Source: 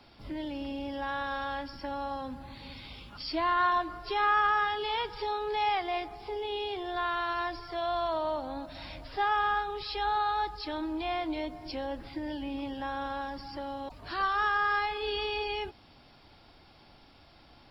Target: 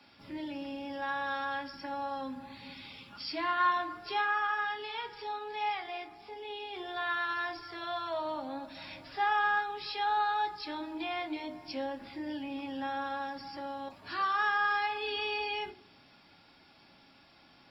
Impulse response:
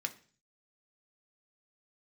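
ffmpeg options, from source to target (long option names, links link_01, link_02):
-filter_complex "[0:a]asplit=3[link_01][link_02][link_03];[link_01]afade=type=out:start_time=4.21:duration=0.02[link_04];[link_02]flanger=delay=1.2:depth=3.1:regen=-68:speed=1.2:shape=triangular,afade=type=in:start_time=4.21:duration=0.02,afade=type=out:start_time=6.73:duration=0.02[link_05];[link_03]afade=type=in:start_time=6.73:duration=0.02[link_06];[link_04][link_05][link_06]amix=inputs=3:normalize=0[link_07];[1:a]atrim=start_sample=2205[link_08];[link_07][link_08]afir=irnorm=-1:irlink=0,volume=-2dB"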